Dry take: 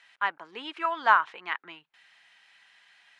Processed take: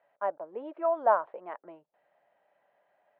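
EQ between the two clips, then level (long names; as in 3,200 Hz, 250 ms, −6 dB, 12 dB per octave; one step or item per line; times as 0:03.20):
low-pass with resonance 590 Hz, resonance Q 7.1
low-shelf EQ 320 Hz −4 dB
0.0 dB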